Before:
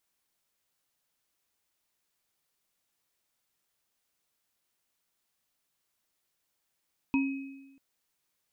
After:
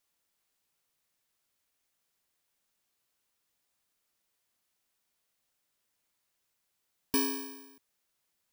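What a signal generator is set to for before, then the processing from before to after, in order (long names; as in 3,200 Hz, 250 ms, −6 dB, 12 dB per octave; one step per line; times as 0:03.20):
inharmonic partials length 0.64 s, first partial 272 Hz, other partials 949/2,540 Hz, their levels −10/−10 dB, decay 1.09 s, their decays 0.22/0.96 s, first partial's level −22 dB
samples in bit-reversed order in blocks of 64 samples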